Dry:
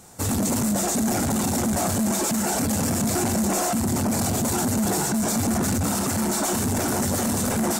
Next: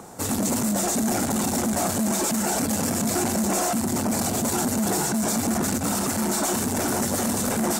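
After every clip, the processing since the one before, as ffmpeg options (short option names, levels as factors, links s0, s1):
-filter_complex "[0:a]acrossover=split=170|1400|3900[s0][s1][s2][s3];[s0]asoftclip=type=tanh:threshold=0.0178[s4];[s1]acompressor=mode=upward:threshold=0.0178:ratio=2.5[s5];[s4][s5][s2][s3]amix=inputs=4:normalize=0"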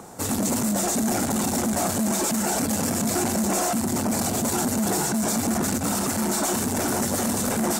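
-af anull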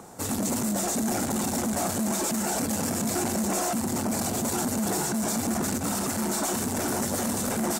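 -filter_complex "[0:a]asplit=7[s0][s1][s2][s3][s4][s5][s6];[s1]adelay=292,afreqshift=140,volume=0.112[s7];[s2]adelay=584,afreqshift=280,volume=0.0692[s8];[s3]adelay=876,afreqshift=420,volume=0.0432[s9];[s4]adelay=1168,afreqshift=560,volume=0.0266[s10];[s5]adelay=1460,afreqshift=700,volume=0.0166[s11];[s6]adelay=1752,afreqshift=840,volume=0.0102[s12];[s0][s7][s8][s9][s10][s11][s12]amix=inputs=7:normalize=0,volume=0.668"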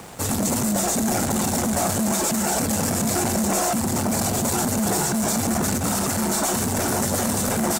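-filter_complex "[0:a]acrossover=split=310|2200[s0][s1][s2];[s0]aecho=1:1:1.5:0.6[s3];[s1]acrusher=bits=7:mix=0:aa=0.000001[s4];[s3][s4][s2]amix=inputs=3:normalize=0,volume=1.88"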